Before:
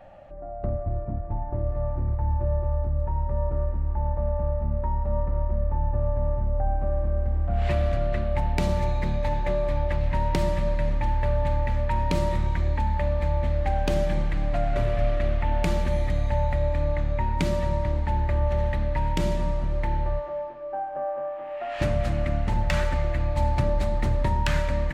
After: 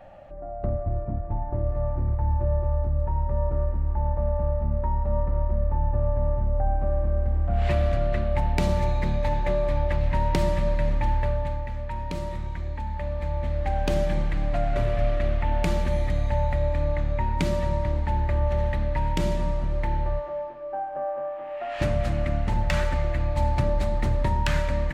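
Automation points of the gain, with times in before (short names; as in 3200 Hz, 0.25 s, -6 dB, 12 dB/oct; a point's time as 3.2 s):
11.15 s +1 dB
11.67 s -7 dB
12.78 s -7 dB
13.91 s 0 dB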